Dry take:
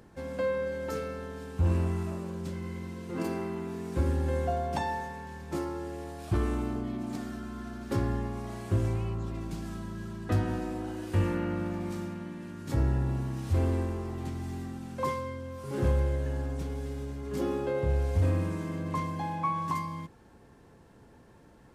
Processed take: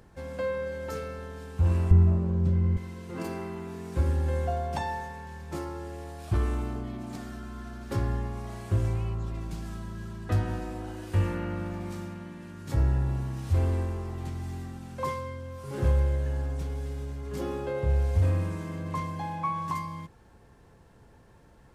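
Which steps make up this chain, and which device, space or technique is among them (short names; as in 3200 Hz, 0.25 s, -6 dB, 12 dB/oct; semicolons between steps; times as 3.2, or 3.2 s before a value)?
1.91–2.77 tilt -4 dB/oct; low shelf boost with a cut just above (low shelf 77 Hz +6.5 dB; bell 270 Hz -5 dB 1.1 oct)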